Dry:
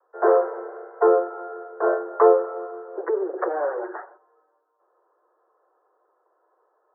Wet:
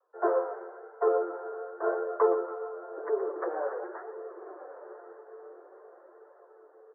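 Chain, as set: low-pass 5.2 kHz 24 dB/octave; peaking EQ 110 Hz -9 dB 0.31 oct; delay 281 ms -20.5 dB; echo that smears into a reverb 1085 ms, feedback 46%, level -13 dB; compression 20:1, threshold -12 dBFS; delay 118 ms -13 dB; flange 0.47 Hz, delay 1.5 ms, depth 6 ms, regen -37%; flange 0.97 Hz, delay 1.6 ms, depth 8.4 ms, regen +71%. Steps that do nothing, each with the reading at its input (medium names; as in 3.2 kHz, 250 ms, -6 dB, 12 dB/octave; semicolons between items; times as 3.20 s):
low-pass 5.2 kHz: input has nothing above 1.6 kHz; peaking EQ 110 Hz: input has nothing below 300 Hz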